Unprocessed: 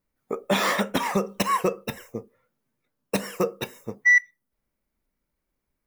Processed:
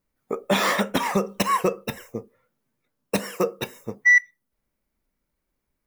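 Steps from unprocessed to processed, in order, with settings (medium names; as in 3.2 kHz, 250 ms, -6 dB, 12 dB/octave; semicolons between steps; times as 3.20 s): 3.18–3.59 s: high-pass 170 Hz; trim +1.5 dB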